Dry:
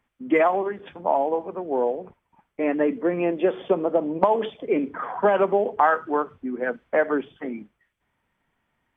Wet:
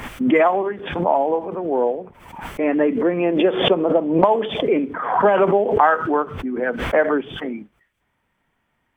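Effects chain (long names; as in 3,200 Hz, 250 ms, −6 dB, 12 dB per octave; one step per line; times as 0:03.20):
background raised ahead of every attack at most 65 dB per second
level +3.5 dB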